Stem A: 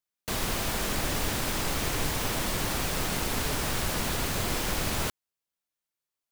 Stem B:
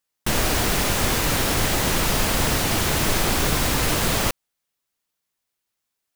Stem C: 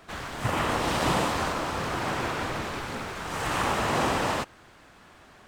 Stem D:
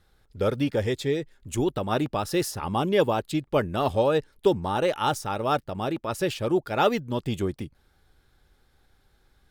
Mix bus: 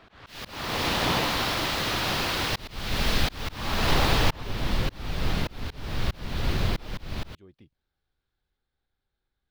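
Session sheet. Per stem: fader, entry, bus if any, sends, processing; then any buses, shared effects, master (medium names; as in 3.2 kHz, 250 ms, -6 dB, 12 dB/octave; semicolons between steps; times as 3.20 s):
-1.5 dB, 2.25 s, no send, bass shelf 180 Hz +12 dB
-8.5 dB, 0.00 s, no send, tilt shelf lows -7 dB, about 1.4 kHz
-2.0 dB, 0.00 s, no send, octave divider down 1 oct, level -4 dB
-19.5 dB, 0.00 s, no send, none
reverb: none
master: resonant high shelf 5.7 kHz -11 dB, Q 1.5; slow attack 403 ms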